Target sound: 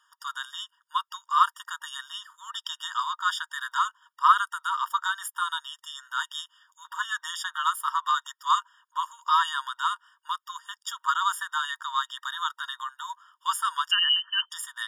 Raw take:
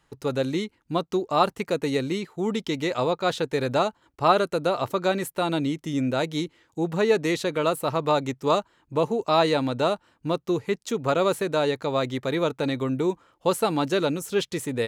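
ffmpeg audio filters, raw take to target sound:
-filter_complex "[0:a]asettb=1/sr,asplit=3[a][b][c];[a]atrim=end=13.914[d];[b]atrim=start=13.91:end=14.51,asetpts=PTS-STARTPTS,afade=t=in:d=0.004:c=qsin,afade=t=out:st=0.596:d=0.004:c=qsin,lowpass=f=2.7k:t=q:w=0.5098,lowpass=f=2.7k:t=q:w=0.6013,lowpass=f=2.7k:t=q:w=0.9,lowpass=f=2.7k:t=q:w=2.563,afreqshift=-3200[e];[c]atrim=start=14.506[f];[d][e]acrossfade=d=0.004:c1=hsin:c2=qsin[g];[g][f]acrossfade=d=0.004:c1=qsin:c2=hsin,afftfilt=real='re*eq(mod(floor(b*sr/1024/940),2),1)':imag='im*eq(mod(floor(b*sr/1024/940),2),1)':win_size=1024:overlap=0.75,volume=5dB"

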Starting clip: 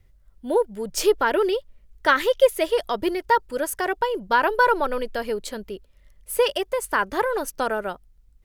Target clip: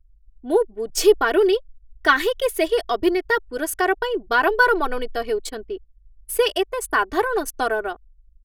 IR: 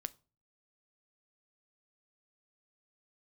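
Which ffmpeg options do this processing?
-af "anlmdn=0.631,aecho=1:1:2.7:0.88"

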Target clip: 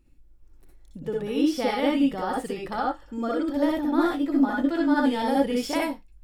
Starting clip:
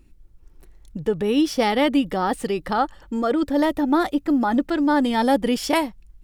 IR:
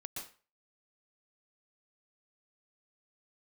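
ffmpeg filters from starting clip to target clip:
-filter_complex "[0:a]asettb=1/sr,asplit=3[a][b][c];[a]atrim=end=3.964[d];[b]atrim=start=3.96:end=5.16,asetpts=PTS-STARTPTS,afade=t=in:d=0.004:c=qsin,afade=t=out:st=1.196:d=0.004:c=qsin,asplit=2[e][f];[f]adelay=15,volume=-3.5dB[g];[e][g]amix=inputs=2:normalize=0,atrim=end_sample=52920[h];[c]atrim=start=5.156[i];[d][h]acrossfade=d=0.004:c1=hsin:c2=qsin[j];[j][i]acrossfade=d=0.004:c1=qsin:c2=hsin[k];[1:a]atrim=start_sample=2205,asetrate=88200,aresample=44100[l];[k][l]afir=irnorm=-1:irlink=0,volume=2.5dB"

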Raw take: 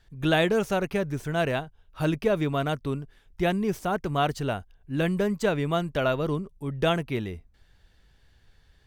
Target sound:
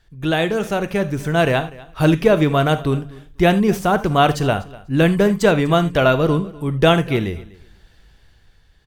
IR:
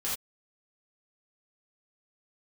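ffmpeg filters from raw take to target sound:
-filter_complex "[0:a]dynaudnorm=f=210:g=9:m=8dB,aecho=1:1:246|492:0.0891|0.0152,asplit=2[a][b];[1:a]atrim=start_sample=2205,atrim=end_sample=3969[c];[b][c]afir=irnorm=-1:irlink=0,volume=-14dB[d];[a][d]amix=inputs=2:normalize=0,volume=1.5dB"

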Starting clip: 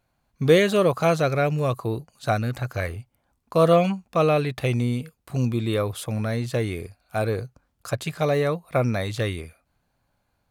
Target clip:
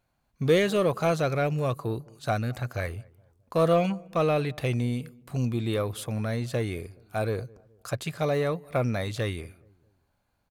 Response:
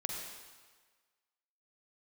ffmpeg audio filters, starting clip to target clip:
-filter_complex "[0:a]asplit=2[a][b];[b]asoftclip=type=tanh:threshold=-21dB,volume=-5.5dB[c];[a][c]amix=inputs=2:normalize=0,asplit=2[d][e];[e]adelay=211,lowpass=f=850:p=1,volume=-23dB,asplit=2[f][g];[g]adelay=211,lowpass=f=850:p=1,volume=0.45,asplit=2[h][i];[i]adelay=211,lowpass=f=850:p=1,volume=0.45[j];[d][f][h][j]amix=inputs=4:normalize=0,volume=-6.5dB"

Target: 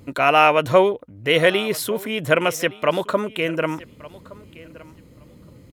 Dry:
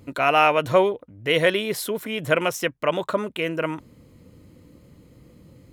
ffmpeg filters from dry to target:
-af "aecho=1:1:1168|2336:0.0891|0.0134,volume=3dB"

